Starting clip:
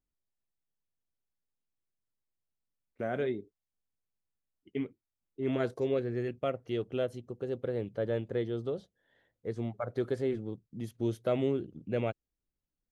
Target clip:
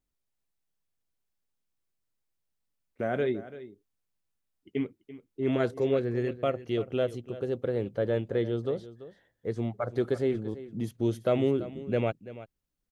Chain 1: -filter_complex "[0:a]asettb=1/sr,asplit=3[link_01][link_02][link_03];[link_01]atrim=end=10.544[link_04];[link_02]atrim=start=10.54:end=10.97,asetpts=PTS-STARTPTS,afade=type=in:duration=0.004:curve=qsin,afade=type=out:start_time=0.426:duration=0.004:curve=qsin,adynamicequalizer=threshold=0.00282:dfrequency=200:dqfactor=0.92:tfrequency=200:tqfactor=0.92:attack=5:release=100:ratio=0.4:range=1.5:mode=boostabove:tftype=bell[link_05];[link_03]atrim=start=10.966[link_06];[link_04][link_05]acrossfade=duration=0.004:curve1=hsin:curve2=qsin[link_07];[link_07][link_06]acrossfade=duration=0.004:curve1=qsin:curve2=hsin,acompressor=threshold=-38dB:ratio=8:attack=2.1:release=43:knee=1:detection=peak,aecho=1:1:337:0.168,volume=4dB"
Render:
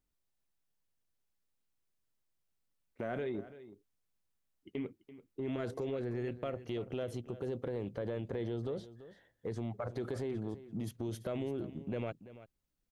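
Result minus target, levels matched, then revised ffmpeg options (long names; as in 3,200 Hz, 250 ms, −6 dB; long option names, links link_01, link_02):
downward compressor: peak gain reduction +14 dB
-filter_complex "[0:a]asettb=1/sr,asplit=3[link_01][link_02][link_03];[link_01]atrim=end=10.544[link_04];[link_02]atrim=start=10.54:end=10.97,asetpts=PTS-STARTPTS,afade=type=in:duration=0.004:curve=qsin,afade=type=out:start_time=0.426:duration=0.004:curve=qsin,adynamicequalizer=threshold=0.00282:dfrequency=200:dqfactor=0.92:tfrequency=200:tqfactor=0.92:attack=5:release=100:ratio=0.4:range=1.5:mode=boostabove:tftype=bell[link_05];[link_03]atrim=start=10.966[link_06];[link_04][link_05]acrossfade=duration=0.004:curve1=hsin:curve2=qsin[link_07];[link_07][link_06]acrossfade=duration=0.004:curve1=qsin:curve2=hsin,aecho=1:1:337:0.168,volume=4dB"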